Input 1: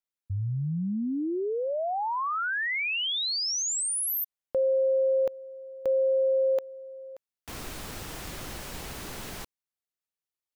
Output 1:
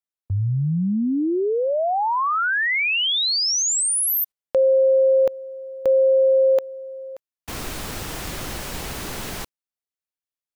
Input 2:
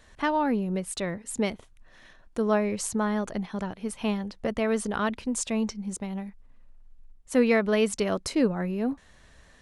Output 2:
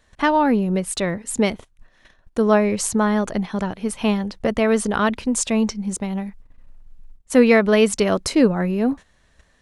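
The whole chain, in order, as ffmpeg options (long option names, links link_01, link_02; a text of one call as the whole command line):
ffmpeg -i in.wav -af "agate=range=-12dB:threshold=-51dB:ratio=16:release=128:detection=peak,volume=8dB" out.wav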